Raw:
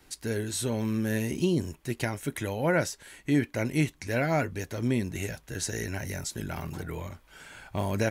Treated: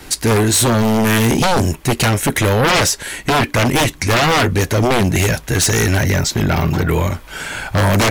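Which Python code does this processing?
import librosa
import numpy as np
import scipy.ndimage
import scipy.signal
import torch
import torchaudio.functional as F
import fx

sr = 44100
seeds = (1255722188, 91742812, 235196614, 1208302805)

y = fx.peak_eq(x, sr, hz=9700.0, db=-14.5, octaves=0.74, at=(6.03, 6.89))
y = fx.fold_sine(y, sr, drive_db=14, ceiling_db=-14.0)
y = y * librosa.db_to_amplitude(4.0)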